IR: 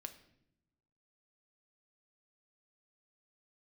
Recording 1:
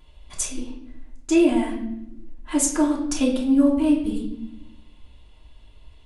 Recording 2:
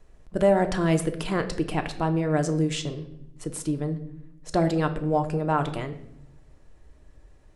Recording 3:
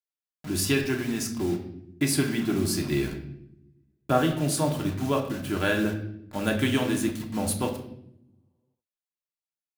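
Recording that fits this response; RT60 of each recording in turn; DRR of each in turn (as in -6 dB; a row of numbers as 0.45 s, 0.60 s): 2; 0.75 s, no single decay rate, 0.75 s; -3.5 dB, 6.0 dB, 1.0 dB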